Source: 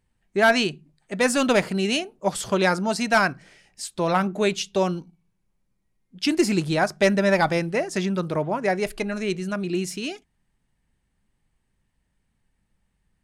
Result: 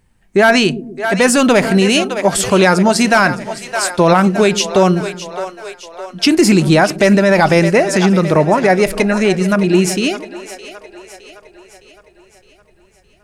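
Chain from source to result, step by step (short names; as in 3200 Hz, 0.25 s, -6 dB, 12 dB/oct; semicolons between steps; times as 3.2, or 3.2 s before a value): bell 3600 Hz -2.5 dB; on a send: split-band echo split 390 Hz, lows 0.129 s, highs 0.613 s, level -14.5 dB; on the sum: maximiser +15 dB; gain -1 dB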